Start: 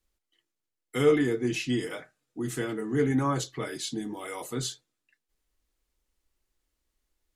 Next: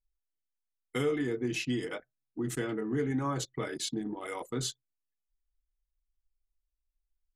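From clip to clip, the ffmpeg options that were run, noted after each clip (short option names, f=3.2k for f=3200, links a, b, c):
-af "anlmdn=1,acompressor=threshold=-29dB:ratio=3"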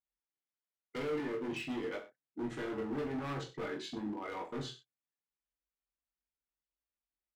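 -filter_complex "[0:a]highpass=130,lowpass=2.7k,asoftclip=type=hard:threshold=-34.5dB,asplit=2[a][b];[b]aecho=0:1:20|42|66.2|92.82|122.1:0.631|0.398|0.251|0.158|0.1[c];[a][c]amix=inputs=2:normalize=0,volume=-3dB"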